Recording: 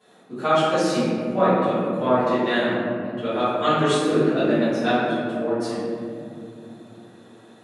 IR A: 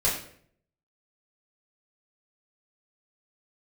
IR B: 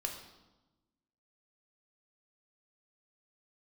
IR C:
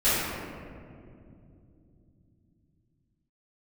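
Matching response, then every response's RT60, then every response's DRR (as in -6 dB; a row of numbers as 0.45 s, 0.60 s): C; 0.60 s, 1.1 s, 2.6 s; -9.0 dB, 2.0 dB, -15.5 dB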